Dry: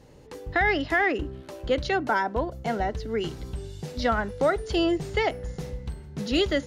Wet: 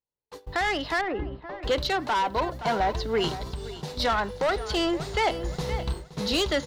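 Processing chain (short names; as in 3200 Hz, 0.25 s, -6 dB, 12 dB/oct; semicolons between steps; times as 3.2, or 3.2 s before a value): fifteen-band EQ 100 Hz -4 dB, 250 Hz -4 dB, 1000 Hz +9 dB, 4000 Hz +9 dB; soft clip -21 dBFS, distortion -10 dB; bit-crush 11-bit; gate -38 dBFS, range -46 dB; 5.64–6.36 doubler 30 ms -6 dB; feedback echo 0.521 s, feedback 29%, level -15 dB; vocal rider within 3 dB 0.5 s; 1.01–1.63 tape spacing loss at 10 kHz 43 dB; 3.34–4 compressor, threshold -32 dBFS, peak gain reduction 5.5 dB; gain +2 dB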